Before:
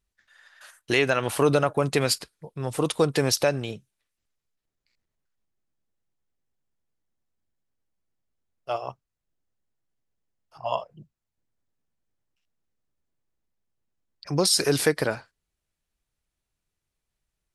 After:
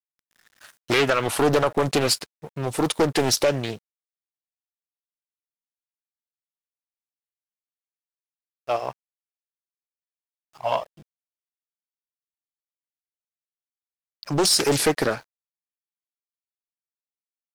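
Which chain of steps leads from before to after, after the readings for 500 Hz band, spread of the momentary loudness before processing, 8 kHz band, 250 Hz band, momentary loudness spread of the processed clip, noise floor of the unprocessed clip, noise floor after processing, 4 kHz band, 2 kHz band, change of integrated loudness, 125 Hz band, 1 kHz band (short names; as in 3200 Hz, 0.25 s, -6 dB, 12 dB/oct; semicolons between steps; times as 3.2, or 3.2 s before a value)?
+1.5 dB, 15 LU, +3.0 dB, +2.5 dB, 14 LU, -84 dBFS, under -85 dBFS, +3.0 dB, +1.0 dB, +2.0 dB, 0.0 dB, +4.0 dB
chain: low shelf 200 Hz -4 dB; sample leveller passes 2; bit-crush 9-bit; Doppler distortion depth 0.73 ms; gain -2.5 dB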